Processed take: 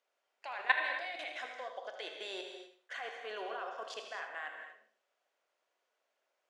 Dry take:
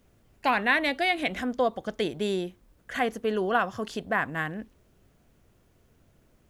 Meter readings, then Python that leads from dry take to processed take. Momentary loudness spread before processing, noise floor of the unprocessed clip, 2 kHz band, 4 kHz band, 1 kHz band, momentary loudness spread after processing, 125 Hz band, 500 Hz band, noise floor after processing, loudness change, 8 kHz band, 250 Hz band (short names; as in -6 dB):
10 LU, -64 dBFS, -8.5 dB, -9.0 dB, -12.5 dB, 16 LU, under -40 dB, -15.5 dB, -84 dBFS, -11.5 dB, -10.5 dB, -26.5 dB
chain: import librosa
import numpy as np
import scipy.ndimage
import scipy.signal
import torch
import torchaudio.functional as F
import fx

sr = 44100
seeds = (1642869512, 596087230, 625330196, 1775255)

y = scipy.signal.sosfilt(scipy.signal.butter(4, 570.0, 'highpass', fs=sr, output='sos'), x)
y = fx.high_shelf(y, sr, hz=4000.0, db=5.5)
y = fx.level_steps(y, sr, step_db=20)
y = fx.air_absorb(y, sr, metres=110.0)
y = fx.echo_feedback(y, sr, ms=79, feedback_pct=29, wet_db=-10.5)
y = fx.rev_gated(y, sr, seeds[0], gate_ms=280, shape='flat', drr_db=3.5)
y = y * 10.0 ** (-1.5 / 20.0)